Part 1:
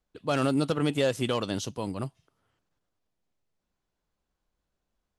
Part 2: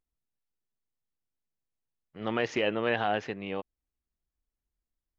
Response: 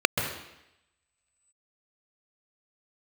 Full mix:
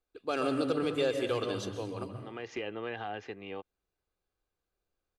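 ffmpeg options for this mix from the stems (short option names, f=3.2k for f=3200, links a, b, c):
-filter_complex "[0:a]volume=-12.5dB,asplit=3[a][b][c];[b]volume=-9.5dB[d];[1:a]acrossover=split=210[e][f];[f]acompressor=threshold=-30dB:ratio=3[g];[e][g]amix=inputs=2:normalize=0,volume=-6dB[h];[c]apad=whole_len=233087[i];[h][i]sidechaincompress=threshold=-55dB:ratio=8:attack=47:release=470[j];[2:a]atrim=start_sample=2205[k];[d][k]afir=irnorm=-1:irlink=0[l];[a][j][l]amix=inputs=3:normalize=0,equalizer=f=140:w=6.7:g=-13,aecho=1:1:2.5:0.35"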